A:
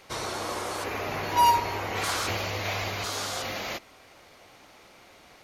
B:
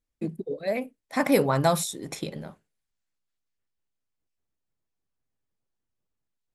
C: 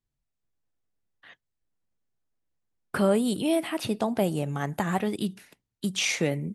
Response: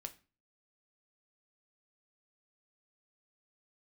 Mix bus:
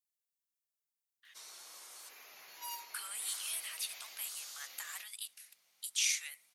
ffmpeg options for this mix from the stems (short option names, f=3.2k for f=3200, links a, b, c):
-filter_complex "[0:a]aeval=exprs='val(0)+0.00355*(sin(2*PI*50*n/s)+sin(2*PI*2*50*n/s)/2+sin(2*PI*3*50*n/s)/3+sin(2*PI*4*50*n/s)/4+sin(2*PI*5*50*n/s)/5)':c=same,bandreject=f=50:t=h:w=6,bandreject=f=100:t=h:w=6,adelay=1250,volume=-11dB[a];[2:a]highpass=f=1.2k:w=0.5412,highpass=f=1.2k:w=1.3066,volume=0.5dB[b];[a][b]amix=inputs=2:normalize=0,aderivative"